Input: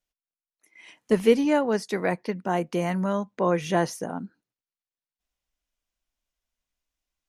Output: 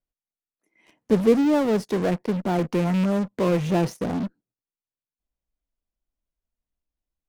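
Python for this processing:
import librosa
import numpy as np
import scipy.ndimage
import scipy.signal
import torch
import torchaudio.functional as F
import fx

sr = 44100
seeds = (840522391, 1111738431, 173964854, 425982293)

p1 = fx.rattle_buzz(x, sr, strikes_db=-26.0, level_db=-19.0)
p2 = fx.tilt_shelf(p1, sr, db=9.0, hz=970.0)
p3 = fx.fuzz(p2, sr, gain_db=37.0, gate_db=-45.0)
p4 = p2 + (p3 * librosa.db_to_amplitude(-9.0))
y = p4 * librosa.db_to_amplitude(-6.5)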